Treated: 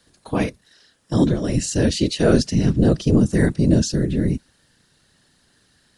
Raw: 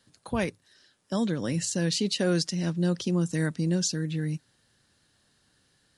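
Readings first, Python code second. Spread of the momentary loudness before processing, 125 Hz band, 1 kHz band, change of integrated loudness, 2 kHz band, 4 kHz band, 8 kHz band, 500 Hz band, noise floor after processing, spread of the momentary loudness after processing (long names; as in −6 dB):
8 LU, +9.5 dB, +7.0 dB, +8.5 dB, +5.0 dB, +3.0 dB, +3.0 dB, +9.5 dB, −61 dBFS, 7 LU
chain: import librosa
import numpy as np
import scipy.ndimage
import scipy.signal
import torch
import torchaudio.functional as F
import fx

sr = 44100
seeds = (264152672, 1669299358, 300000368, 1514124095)

y = fx.hpss(x, sr, part='harmonic', gain_db=9)
y = fx.whisperise(y, sr, seeds[0])
y = y * librosa.db_to_amplitude(1.0)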